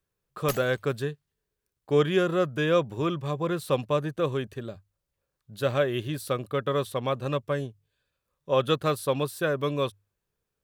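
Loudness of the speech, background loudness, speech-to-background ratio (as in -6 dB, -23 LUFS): -27.5 LUFS, -39.0 LUFS, 11.5 dB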